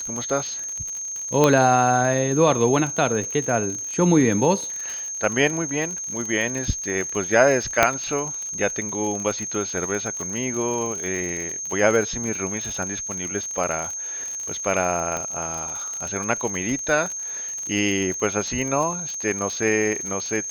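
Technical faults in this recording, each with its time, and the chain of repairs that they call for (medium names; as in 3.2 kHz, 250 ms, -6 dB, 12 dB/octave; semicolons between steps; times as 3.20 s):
crackle 51 per s -27 dBFS
whine 6.4 kHz -28 dBFS
1.44 s: pop -4 dBFS
7.83 s: pop 0 dBFS
15.17 s: pop -13 dBFS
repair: de-click; band-stop 6.4 kHz, Q 30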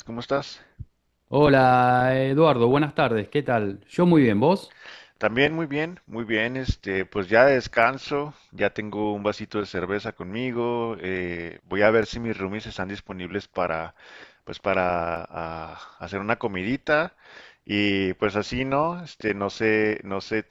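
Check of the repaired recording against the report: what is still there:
1.44 s: pop
7.83 s: pop
15.17 s: pop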